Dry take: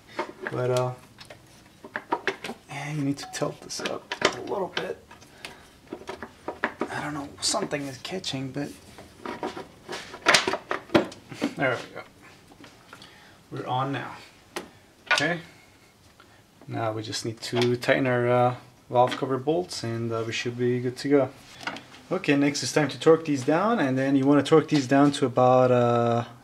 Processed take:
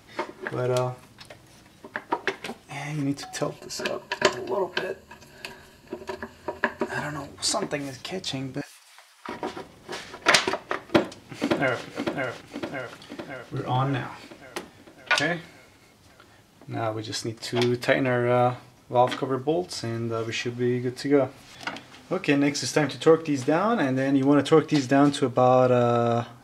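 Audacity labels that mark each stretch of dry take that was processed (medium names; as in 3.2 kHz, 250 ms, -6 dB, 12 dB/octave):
3.560000	7.290000	rippled EQ curve crests per octave 1.4, crest to trough 9 dB
8.610000	9.290000	high-pass 890 Hz 24 dB/octave
10.900000	11.850000	echo throw 560 ms, feedback 60%, level -5 dB
13.540000	14.070000	bass shelf 150 Hz +11.5 dB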